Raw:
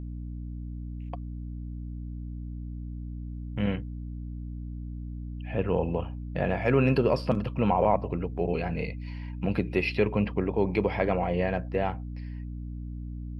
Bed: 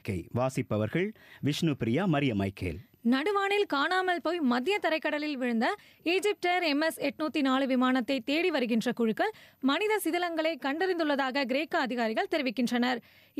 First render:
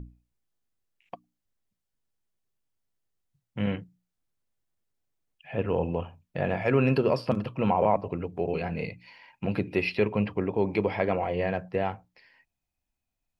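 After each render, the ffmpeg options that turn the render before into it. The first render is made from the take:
-af "bandreject=f=60:t=h:w=6,bandreject=f=120:t=h:w=6,bandreject=f=180:t=h:w=6,bandreject=f=240:t=h:w=6,bandreject=f=300:t=h:w=6"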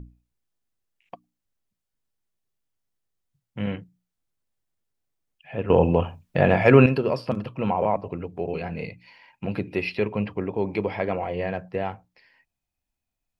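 -filter_complex "[0:a]asplit=3[s0][s1][s2];[s0]atrim=end=5.702[s3];[s1]atrim=start=5.698:end=6.862,asetpts=PTS-STARTPTS,volume=2.99[s4];[s2]atrim=start=6.858[s5];[s3][s4]acrossfade=d=0.004:c1=hsin:c2=hsin[s6];[s6][s5]acrossfade=d=0.004:c1=hsin:c2=hsin"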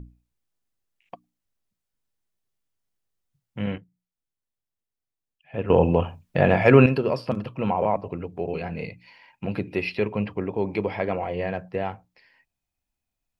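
-filter_complex "[0:a]asplit=3[s0][s1][s2];[s0]atrim=end=3.782[s3];[s1]atrim=start=3.778:end=5.542,asetpts=PTS-STARTPTS,volume=0.376[s4];[s2]atrim=start=5.538[s5];[s3][s4]acrossfade=d=0.004:c1=hsin:c2=hsin[s6];[s6][s5]acrossfade=d=0.004:c1=hsin:c2=hsin"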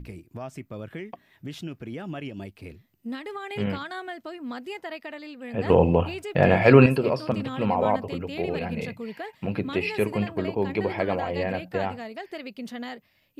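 -filter_complex "[1:a]volume=0.398[s0];[0:a][s0]amix=inputs=2:normalize=0"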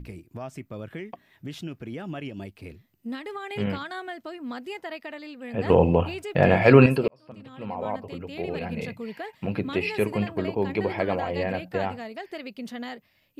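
-filter_complex "[0:a]asplit=2[s0][s1];[s0]atrim=end=7.08,asetpts=PTS-STARTPTS,afade=t=out:st=7.076:d=0.004:c=hsin[s2];[s1]atrim=start=7.08,asetpts=PTS-STARTPTS,afade=t=in:d=1.91[s3];[s2][s3]concat=n=2:v=0:a=1"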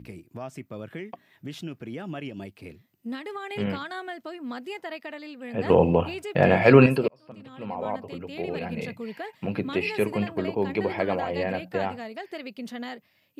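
-af "highpass=110"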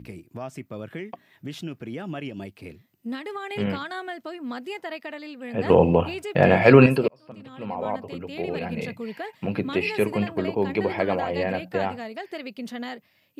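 -af "volume=1.26,alimiter=limit=0.891:level=0:latency=1"

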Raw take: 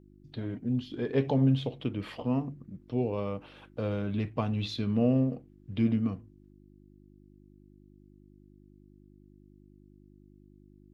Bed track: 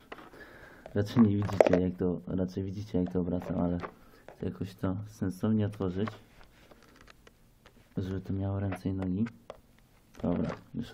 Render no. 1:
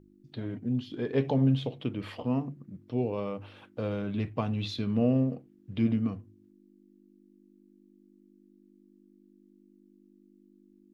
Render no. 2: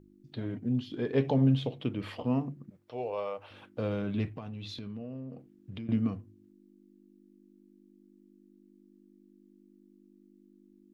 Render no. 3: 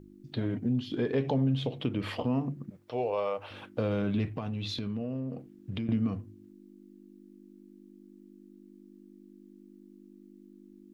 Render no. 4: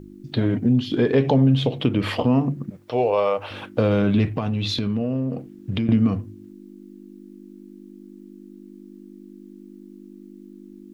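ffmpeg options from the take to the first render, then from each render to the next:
-af "bandreject=f=50:t=h:w=4,bandreject=f=100:t=h:w=4,bandreject=f=150:t=h:w=4"
-filter_complex "[0:a]asettb=1/sr,asplit=3[s0][s1][s2];[s0]atrim=end=2.704[s3];[s1]atrim=start=2.7:end=3.51,asetpts=PTS-STARTPTS,afade=t=in:d=0.004:c=qsin,afade=t=out:st=0.806:d=0.004:c=qsin,lowshelf=f=390:t=q:w=1.5:g=-14[s4];[s2]atrim=start=3.506[s5];[s3][s4]acrossfade=d=0.004:c1=hsin:c2=qsin[s6];[s6][s5]acrossfade=d=0.004:c1=qsin:c2=hsin,asettb=1/sr,asplit=3[s7][s8][s9];[s7]atrim=end=4.374[s10];[s8]atrim=start=4.37:end=5.89,asetpts=PTS-STARTPTS,afade=t=in:d=0.004:c=qsin,afade=t=out:st=1.516:d=0.004:c=qsin,acompressor=threshold=0.0126:ratio=6:attack=3.2:release=140:knee=1:detection=peak[s11];[s9]atrim=start=5.886[s12];[s10][s11]acrossfade=d=0.004:c1=hsin:c2=qsin[s13];[s13][s12]acrossfade=d=0.004:c1=qsin:c2=hsin"
-filter_complex "[0:a]asplit=2[s0][s1];[s1]alimiter=level_in=1.12:limit=0.0631:level=0:latency=1:release=69,volume=0.891,volume=1.12[s2];[s0][s2]amix=inputs=2:normalize=0,acompressor=threshold=0.0398:ratio=2"
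-af "volume=3.35"

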